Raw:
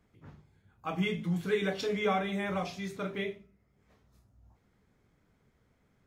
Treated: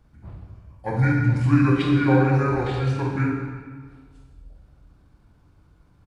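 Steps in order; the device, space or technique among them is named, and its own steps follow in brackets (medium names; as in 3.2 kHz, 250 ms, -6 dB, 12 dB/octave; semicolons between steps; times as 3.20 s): monster voice (pitch shift -6.5 st; bass shelf 120 Hz +8 dB; reverberation RT60 1.6 s, pre-delay 28 ms, DRR 0 dB); trim +6.5 dB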